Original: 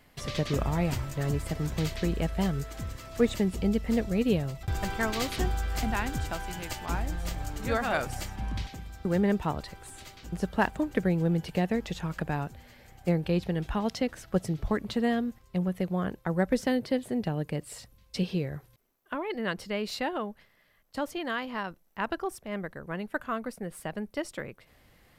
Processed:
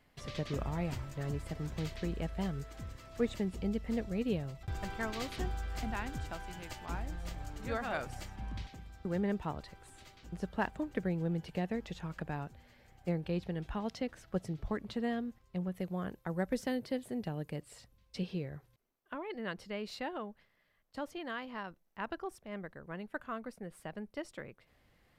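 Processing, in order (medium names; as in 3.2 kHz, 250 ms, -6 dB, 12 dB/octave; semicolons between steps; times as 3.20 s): treble shelf 7.9 kHz -8 dB, from 15.74 s +3 dB, from 17.61 s -8 dB; trim -8 dB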